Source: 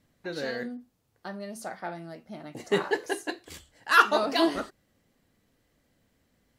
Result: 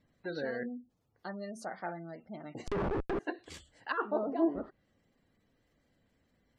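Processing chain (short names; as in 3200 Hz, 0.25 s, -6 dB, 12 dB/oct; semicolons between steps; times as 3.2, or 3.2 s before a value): spectral gate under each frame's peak -25 dB strong; 2.67–3.19 Schmitt trigger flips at -35.5 dBFS; treble ducked by the level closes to 590 Hz, closed at -24.5 dBFS; gain -3 dB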